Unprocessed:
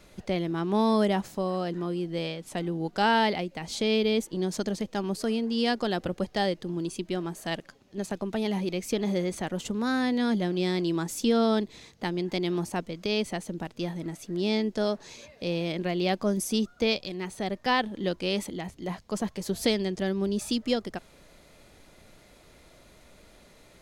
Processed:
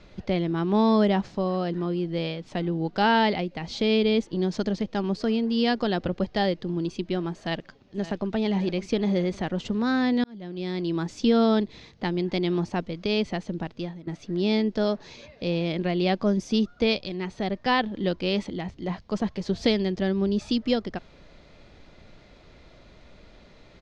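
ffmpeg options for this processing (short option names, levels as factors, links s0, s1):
-filter_complex "[0:a]asplit=2[s0][s1];[s1]afade=t=in:st=7.38:d=0.01,afade=t=out:st=8.33:d=0.01,aecho=0:1:560|1120|1680|2240|2800:0.188365|0.0941825|0.0470912|0.0235456|0.0117728[s2];[s0][s2]amix=inputs=2:normalize=0,asplit=3[s3][s4][s5];[s3]atrim=end=10.24,asetpts=PTS-STARTPTS,afade=t=out:st=10.236:d=0.004:c=hsin[s6];[s4]atrim=start=10.24:end=14.07,asetpts=PTS-STARTPTS,afade=t=in:d=0.93,afade=t=out:st=3.43:d=0.4:silence=0.11885[s7];[s5]atrim=start=14.07,asetpts=PTS-STARTPTS,afade=t=in:d=0.004:c=hsin:silence=0.11885[s8];[s6][s7][s8]concat=n=3:v=0:a=1,lowpass=f=5200:w=0.5412,lowpass=f=5200:w=1.3066,lowshelf=f=210:g=5,volume=1.19"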